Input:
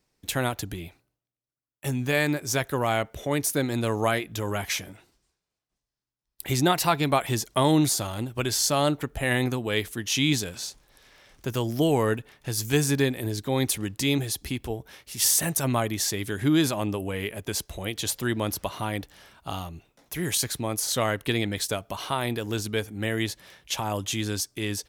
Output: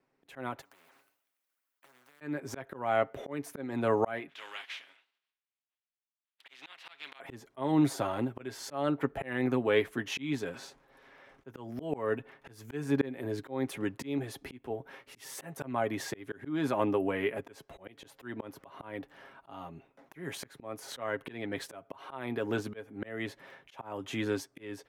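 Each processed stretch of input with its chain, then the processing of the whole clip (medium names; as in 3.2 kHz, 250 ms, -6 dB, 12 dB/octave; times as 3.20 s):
0.61–2.21 s: differentiator + compression 10:1, threshold -43 dBFS + spectrum-flattening compressor 10:1
4.28–7.19 s: spectral contrast reduction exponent 0.51 + band-pass filter 3.3 kHz, Q 2.2
whole clip: three-band isolator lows -16 dB, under 180 Hz, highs -20 dB, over 2.3 kHz; comb 7.4 ms, depth 43%; slow attack 372 ms; trim +1.5 dB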